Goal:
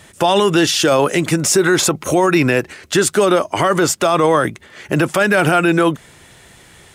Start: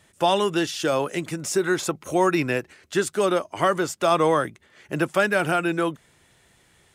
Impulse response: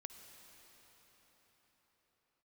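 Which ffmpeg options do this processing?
-af "alimiter=level_in=18.5dB:limit=-1dB:release=50:level=0:latency=1,volume=-4dB"

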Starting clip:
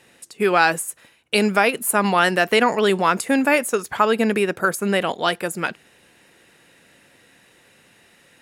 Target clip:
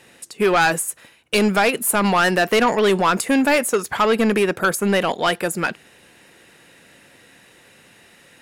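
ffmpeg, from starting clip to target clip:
ffmpeg -i in.wav -af "asoftclip=type=tanh:threshold=-14.5dB,volume=4dB" out.wav

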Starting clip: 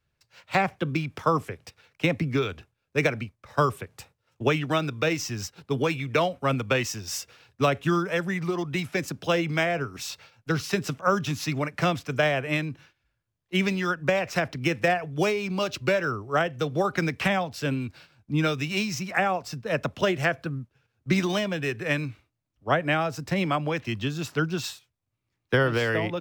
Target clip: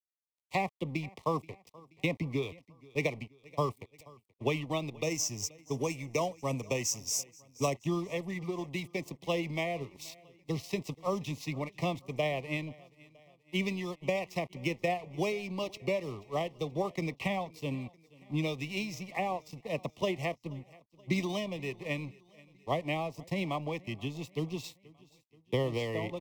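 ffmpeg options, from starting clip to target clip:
ffmpeg -i in.wav -filter_complex "[0:a]asettb=1/sr,asplit=3[link_01][link_02][link_03];[link_01]atrim=end=5.034[link_04];[link_02]atrim=start=5.03:end=7.74,asetpts=PTS-STARTPTS,afade=type=in:duration=0.004:curve=qsin,afade=type=out:start_time=2.706:duration=0.004:curve=qsin,highshelf=frequency=4900:width_type=q:width=3:gain=8[link_05];[link_03]atrim=start=7.736[link_06];[link_04][link_05]acrossfade=duration=0.004:curve1=hsin:curve2=qsin[link_07];[link_07][link_06]acrossfade=duration=0.004:curve1=qsin:curve2=hsin,aeval=exprs='sgn(val(0))*max(abs(val(0))-0.00891,0)':channel_layout=same,asuperstop=centerf=1500:order=8:qfactor=1.9,aecho=1:1:479|958|1437:0.0668|0.0341|0.0174,adynamicequalizer=threshold=0.00631:dfrequency=3200:dqfactor=0.7:tfrequency=3200:tqfactor=0.7:attack=5:release=100:ratio=0.375:range=2.5:mode=cutabove:tftype=highshelf,volume=-6.5dB" out.wav

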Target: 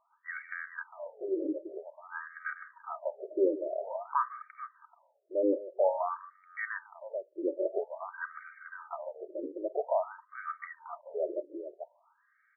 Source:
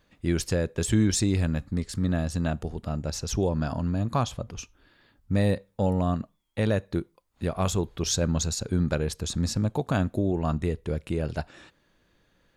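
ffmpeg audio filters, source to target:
ffmpeg -i in.wav -af "aecho=1:1:3.2:0.56,aecho=1:1:49|148|434:0.119|0.188|0.266,afftfilt=real='re*between(b*sr/1024,420*pow(1700/420,0.5+0.5*sin(2*PI*0.5*pts/sr))/1.41,420*pow(1700/420,0.5+0.5*sin(2*PI*0.5*pts/sr))*1.41)':imag='im*between(b*sr/1024,420*pow(1700/420,0.5+0.5*sin(2*PI*0.5*pts/sr))/1.41,420*pow(1700/420,0.5+0.5*sin(2*PI*0.5*pts/sr))*1.41)':win_size=1024:overlap=0.75,volume=2dB" out.wav

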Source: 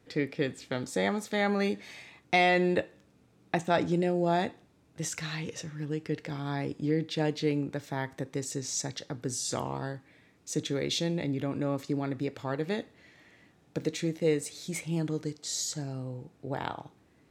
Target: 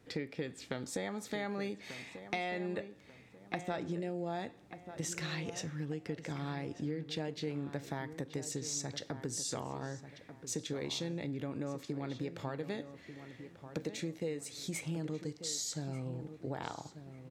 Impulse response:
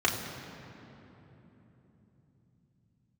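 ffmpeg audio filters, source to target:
-filter_complex "[0:a]acompressor=threshold=-35dB:ratio=6,asplit=2[link_01][link_02];[link_02]adelay=1190,lowpass=frequency=2300:poles=1,volume=-11dB,asplit=2[link_03][link_04];[link_04]adelay=1190,lowpass=frequency=2300:poles=1,volume=0.35,asplit=2[link_05][link_06];[link_06]adelay=1190,lowpass=frequency=2300:poles=1,volume=0.35,asplit=2[link_07][link_08];[link_08]adelay=1190,lowpass=frequency=2300:poles=1,volume=0.35[link_09];[link_01][link_03][link_05][link_07][link_09]amix=inputs=5:normalize=0"

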